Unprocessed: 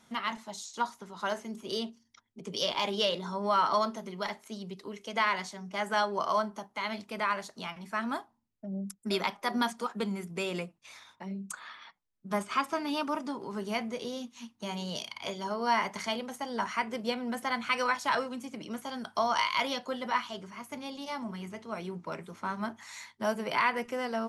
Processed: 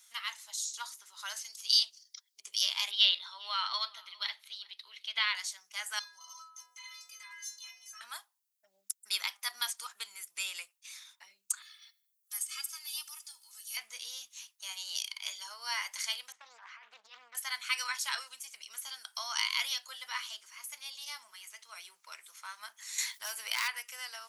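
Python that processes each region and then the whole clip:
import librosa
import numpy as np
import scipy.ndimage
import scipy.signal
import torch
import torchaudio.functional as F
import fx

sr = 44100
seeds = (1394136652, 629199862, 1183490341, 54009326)

y = fx.chain(x, sr, fx.highpass(hz=360.0, slope=6),
    fx.peak_eq(hz=4700.0, db=12.0, octaves=0.87), at=(1.36, 2.4))
y = fx.chain(y, sr, fx.highpass(hz=370.0, slope=12),
    fx.high_shelf_res(hz=5200.0, db=-11.5, q=3.0),
    fx.echo_single(ms=404, db=-23.5), at=(2.91, 5.35))
y = fx.chain(y, sr, fx.peak_eq(hz=6200.0, db=15.0, octaves=0.26),
    fx.stiff_resonator(f0_hz=150.0, decay_s=0.85, stiffness=0.03),
    fx.env_flatten(amount_pct=50), at=(5.99, 8.01))
y = fx.chain(y, sr, fx.differentiator(),
    fx.comb(ms=2.3, depth=0.69),
    fx.echo_feedback(ms=82, feedback_pct=40, wet_db=-22.0), at=(11.62, 13.77))
y = fx.chain(y, sr, fx.over_compress(threshold_db=-35.0, ratio=-1.0),
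    fx.spacing_loss(db_at_10k=43),
    fx.doppler_dist(depth_ms=0.53), at=(16.32, 17.35))
y = fx.chain(y, sr, fx.low_shelf(hz=160.0, db=9.0),
    fx.clip_hard(threshold_db=-22.0),
    fx.env_flatten(amount_pct=50), at=(22.98, 23.68))
y = scipy.signal.sosfilt(scipy.signal.butter(2, 1200.0, 'highpass', fs=sr, output='sos'), y)
y = np.diff(y, prepend=0.0)
y = y * librosa.db_to_amplitude(8.5)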